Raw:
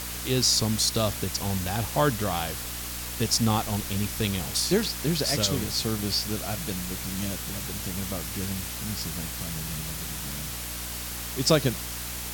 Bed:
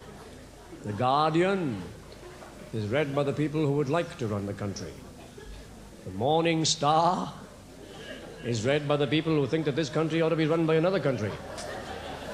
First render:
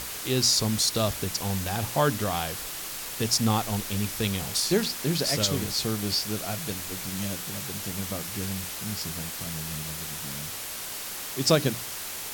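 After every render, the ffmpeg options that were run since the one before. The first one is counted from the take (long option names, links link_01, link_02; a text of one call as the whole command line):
ffmpeg -i in.wav -af "bandreject=frequency=60:width_type=h:width=6,bandreject=frequency=120:width_type=h:width=6,bandreject=frequency=180:width_type=h:width=6,bandreject=frequency=240:width_type=h:width=6,bandreject=frequency=300:width_type=h:width=6" out.wav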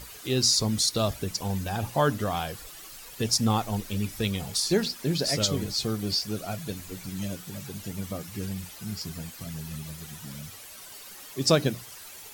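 ffmpeg -i in.wav -af "afftdn=noise_reduction=12:noise_floor=-36" out.wav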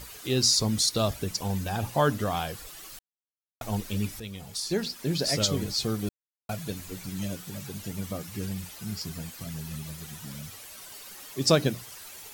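ffmpeg -i in.wav -filter_complex "[0:a]asplit=6[link_01][link_02][link_03][link_04][link_05][link_06];[link_01]atrim=end=2.99,asetpts=PTS-STARTPTS,afade=type=out:start_time=2.986:duration=0.004:curve=hsin[link_07];[link_02]atrim=start=2.99:end=3.61,asetpts=PTS-STARTPTS,volume=0[link_08];[link_03]atrim=start=3.61:end=4.2,asetpts=PTS-STARTPTS,afade=type=in:duration=0.004:curve=hsin,afade=type=out:start_time=0.586:duration=0.004:curve=hsin:silence=0.223872[link_09];[link_04]atrim=start=4.2:end=6.09,asetpts=PTS-STARTPTS,afade=type=in:duration=1.11:silence=0.223872,afade=type=out:start_time=1.886:duration=0.004:curve=hsin[link_10];[link_05]atrim=start=6.09:end=6.49,asetpts=PTS-STARTPTS,volume=0[link_11];[link_06]atrim=start=6.49,asetpts=PTS-STARTPTS,afade=type=in:duration=0.004:curve=hsin[link_12];[link_07][link_08][link_09][link_10][link_11][link_12]concat=n=6:v=0:a=1" out.wav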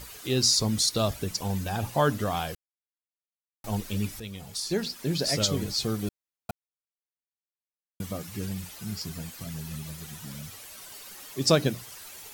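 ffmpeg -i in.wav -filter_complex "[0:a]asplit=5[link_01][link_02][link_03][link_04][link_05];[link_01]atrim=end=2.55,asetpts=PTS-STARTPTS,afade=type=out:start_time=2.546:duration=0.004:curve=hsin[link_06];[link_02]atrim=start=2.55:end=3.64,asetpts=PTS-STARTPTS,volume=0[link_07];[link_03]atrim=start=3.64:end=6.51,asetpts=PTS-STARTPTS,afade=type=in:duration=0.004:curve=hsin,afade=type=out:start_time=2.866:duration=0.004:curve=hsin[link_08];[link_04]atrim=start=6.51:end=8,asetpts=PTS-STARTPTS,volume=0[link_09];[link_05]atrim=start=8,asetpts=PTS-STARTPTS,afade=type=in:duration=0.004:curve=hsin[link_10];[link_06][link_07][link_08][link_09][link_10]concat=n=5:v=0:a=1" out.wav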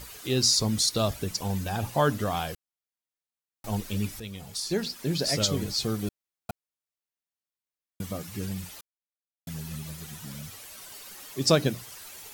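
ffmpeg -i in.wav -filter_complex "[0:a]asplit=3[link_01][link_02][link_03];[link_01]atrim=end=8.81,asetpts=PTS-STARTPTS,afade=type=out:start_time=8.806:duration=0.004:curve=hsin[link_04];[link_02]atrim=start=8.81:end=9.47,asetpts=PTS-STARTPTS,volume=0[link_05];[link_03]atrim=start=9.47,asetpts=PTS-STARTPTS,afade=type=in:duration=0.004:curve=hsin[link_06];[link_04][link_05][link_06]concat=n=3:v=0:a=1" out.wav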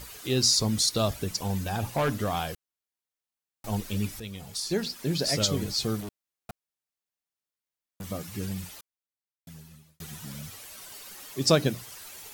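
ffmpeg -i in.wav -filter_complex "[0:a]asettb=1/sr,asplit=3[link_01][link_02][link_03];[link_01]atrim=end=1.454[link_04];[link_02]atrim=start=1.45:end=2.33,asetpts=PTS-STARTPTS,afade=type=in:duration=0.004:curve=qsin,afade=type=out:start_time=0.876:duration=0.004:curve=qsin,volume=21.5dB,asoftclip=hard,volume=-21.5dB[link_05];[link_03]atrim=start=2.326[link_06];[link_04][link_05]acrossfade=duration=0.004:curve1=hsin:curve2=qsin[link_07];[link_07][link_06]acrossfade=duration=0.004:curve1=qsin:curve2=hsin,asettb=1/sr,asplit=3[link_08][link_09][link_10];[link_08]atrim=end=6.004[link_11];[link_09]atrim=start=6:end=8.1,asetpts=PTS-STARTPTS,afade=type=in:duration=0.004:curve=qsin,afade=type=out:start_time=2.096:duration=0.004:curve=qsin,asoftclip=type=hard:threshold=-35dB[link_12];[link_10]atrim=start=8.096[link_13];[link_11][link_12]acrossfade=duration=0.004:curve1=hsin:curve2=qsin[link_14];[link_14][link_13]acrossfade=duration=0.004:curve1=qsin:curve2=hsin,asplit=2[link_15][link_16];[link_15]atrim=end=10,asetpts=PTS-STARTPTS,afade=type=out:start_time=8.63:duration=1.37[link_17];[link_16]atrim=start=10,asetpts=PTS-STARTPTS,afade=type=in:duration=0.004:curve=hsin[link_18];[link_17][link_18]concat=n=2:v=0:a=1" out.wav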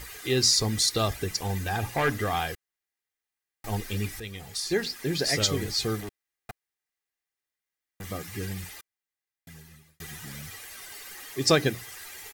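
ffmpeg -i in.wav -af "equalizer=frequency=1900:width_type=o:width=0.52:gain=9.5,aecho=1:1:2.5:0.38" out.wav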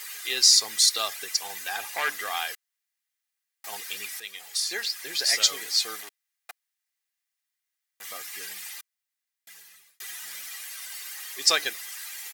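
ffmpeg -i in.wav -af "highpass=680,tiltshelf=frequency=1300:gain=-5.5" out.wav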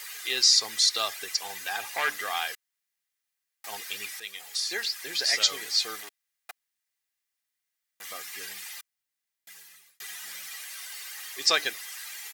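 ffmpeg -i in.wav -filter_complex "[0:a]acrossover=split=6500[link_01][link_02];[link_02]acompressor=threshold=-39dB:ratio=4:attack=1:release=60[link_03];[link_01][link_03]amix=inputs=2:normalize=0,lowshelf=frequency=150:gain=3" out.wav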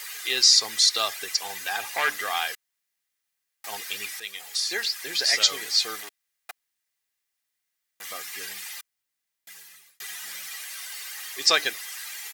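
ffmpeg -i in.wav -af "volume=3dB" out.wav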